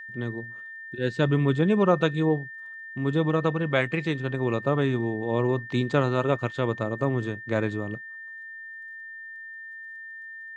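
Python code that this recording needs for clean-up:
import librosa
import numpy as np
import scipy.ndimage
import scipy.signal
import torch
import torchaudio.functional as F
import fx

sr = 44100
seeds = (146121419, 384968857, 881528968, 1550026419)

y = fx.fix_declick_ar(x, sr, threshold=6.5)
y = fx.notch(y, sr, hz=1800.0, q=30.0)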